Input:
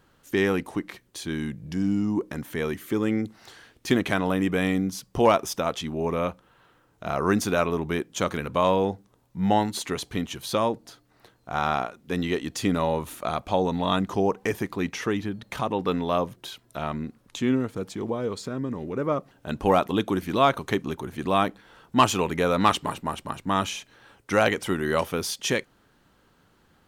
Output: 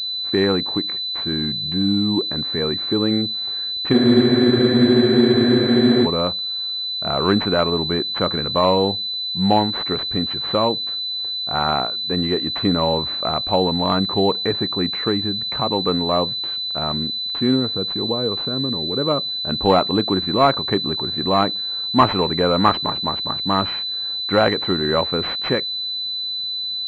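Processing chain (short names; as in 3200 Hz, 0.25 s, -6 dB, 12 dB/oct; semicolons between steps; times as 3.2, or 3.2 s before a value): spectral freeze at 3.95, 2.09 s; pulse-width modulation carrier 4000 Hz; gain +5 dB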